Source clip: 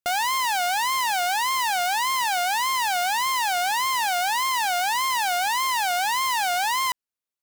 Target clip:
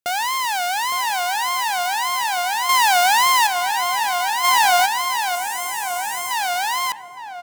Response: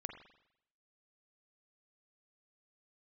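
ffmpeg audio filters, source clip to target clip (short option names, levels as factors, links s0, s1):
-filter_complex "[0:a]highpass=f=110:p=1,asettb=1/sr,asplit=3[s0][s1][s2];[s0]atrim=end=2.694[s3];[s1]atrim=start=2.69:end=3.47,asetpts=PTS-STARTPTS,afade=t=in:d=0.004:c=qsin,afade=t=out:st=0.776:d=0.004:c=qsin,acontrast=77[s4];[s2]atrim=start=3.466[s5];[s3][s4]acrossfade=d=0.004:c1=hsin:c2=qsin[s6];[s6][s5]acrossfade=d=0.004:c1=qsin:c2=hsin,asettb=1/sr,asplit=3[s7][s8][s9];[s7]atrim=end=5.354[s10];[s8]atrim=start=5.35:end=6.31,asetpts=PTS-STARTPTS,afade=t=in:d=0.004:c=qsin,afade=t=out:st=0.956:d=0.004:c=qsin,equalizer=f=500:t=o:w=1:g=5,equalizer=f=1000:t=o:w=1:g=-8,equalizer=f=4000:t=o:w=1:g=-10,equalizer=f=8000:t=o:w=1:g=4[s11];[s9]atrim=start=6.306[s12];[s10][s11]acrossfade=d=0.004:c1=hsin:c2=qsin[s13];[s13][s12]acrossfade=d=0.004:c1=qsin:c2=hsin,asplit=2[s14][s15];[s15]adelay=863,lowpass=f=1100:p=1,volume=0.398,asplit=2[s16][s17];[s17]adelay=863,lowpass=f=1100:p=1,volume=0.5,asplit=2[s18][s19];[s19]adelay=863,lowpass=f=1100:p=1,volume=0.5,asplit=2[s20][s21];[s21]adelay=863,lowpass=f=1100:p=1,volume=0.5,asplit=2[s22][s23];[s23]adelay=863,lowpass=f=1100:p=1,volume=0.5,asplit=2[s24][s25];[s25]adelay=863,lowpass=f=1100:p=1,volume=0.5[s26];[s14][s16][s18][s20][s22][s24][s26]amix=inputs=7:normalize=0,asplit=2[s27][s28];[1:a]atrim=start_sample=2205[s29];[s28][s29]afir=irnorm=-1:irlink=0,volume=0.316[s30];[s27][s30]amix=inputs=2:normalize=0,asplit=3[s31][s32][s33];[s31]afade=t=out:st=4.43:d=0.02[s34];[s32]acontrast=77,afade=t=in:st=4.43:d=0.02,afade=t=out:st=4.85:d=0.02[s35];[s33]afade=t=in:st=4.85:d=0.02[s36];[s34][s35][s36]amix=inputs=3:normalize=0"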